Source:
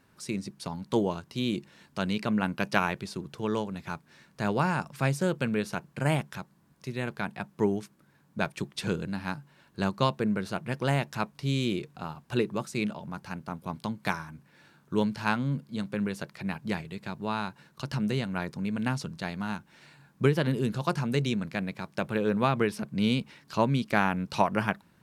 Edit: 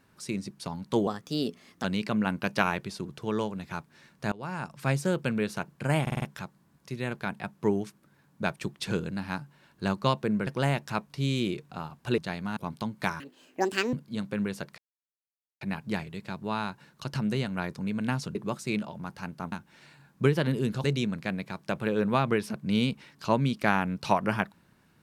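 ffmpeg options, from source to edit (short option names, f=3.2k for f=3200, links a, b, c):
-filter_complex "[0:a]asplit=17[a][b][c][d][e][f][g][h][i][j][k][l][m][n][o][p][q];[a]atrim=end=1.074[r];[b]atrim=start=1.07:end=2,asetpts=PTS-STARTPTS,asetrate=53361,aresample=44100,atrim=end_sample=33895,asetpts=PTS-STARTPTS[s];[c]atrim=start=1.996:end=4.48,asetpts=PTS-STARTPTS,afade=t=out:st=2.48:d=0.004:c=hsin:silence=0.0707946[t];[d]atrim=start=4.48:end=6.232,asetpts=PTS-STARTPTS,afade=t=in:d=0.59:silence=0.0707946[u];[e]atrim=start=6.178:end=6.232[v];[f]atrim=start=6.178:end=6.232[w];[g]atrim=start=6.178:end=6.232[x];[h]atrim=start=6.178:end=10.432[y];[i]atrim=start=10.718:end=12.432[z];[j]atrim=start=19.128:end=19.522[aa];[k]atrim=start=13.598:end=14.234[ab];[l]atrim=start=14.23:end=15.54,asetpts=PTS-STARTPTS,asetrate=78939,aresample=44100,atrim=end_sample=32274,asetpts=PTS-STARTPTS[ac];[m]atrim=start=15.536:end=16.39,asetpts=PTS-STARTPTS,afade=t=out:st=0.85:d=0.004:c=hsin,apad=pad_dur=0.83[ad];[n]atrim=start=16.39:end=19.132,asetpts=PTS-STARTPTS,afade=t=in:d=0.004:c=hsin[ae];[o]atrim=start=12.428:end=13.602[af];[p]atrim=start=19.518:end=20.842[ag];[q]atrim=start=21.128[ah];[r][s]acrossfade=d=0.004:c1=hsin:c2=hsin[ai];[t][u]concat=n=2:v=0:a=1[aj];[ai][aj]acrossfade=d=0.004:c1=hsin:c2=hsin[ak];[ak][v]acrossfade=d=0.004:c1=hsin:c2=hsin[al];[al][w]acrossfade=d=0.004:c1=hsin:c2=hsin[am];[am][x]acrossfade=d=0.004:c1=hsin:c2=hsin[an];[an][y]acrossfade=d=0.004:c1=hsin:c2=hsin[ao];[ao][z]acrossfade=d=0.004:c1=hsin:c2=hsin[ap];[ap][aa]acrossfade=d=0.004:c1=hsin:c2=hsin[aq];[aq][ab]acrossfade=d=0.004:c1=hsin:c2=hsin[ar];[ar][ac]acrossfade=d=0.004:c1=hsin:c2=hsin[as];[ad][ae]concat=n=2:v=0:a=1[at];[as][at]acrossfade=d=0.004:c1=hsin:c2=hsin[au];[au][af]acrossfade=d=0.004:c1=hsin:c2=hsin[av];[av][ag]acrossfade=d=0.004:c1=hsin:c2=hsin[aw];[aw][ah]acrossfade=d=0.004:c1=hsin:c2=hsin"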